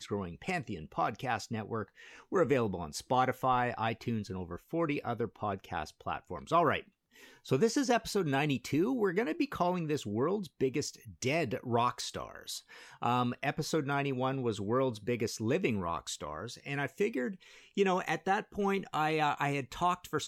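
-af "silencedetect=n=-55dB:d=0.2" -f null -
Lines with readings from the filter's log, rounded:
silence_start: 6.88
silence_end: 7.14 | silence_duration: 0.26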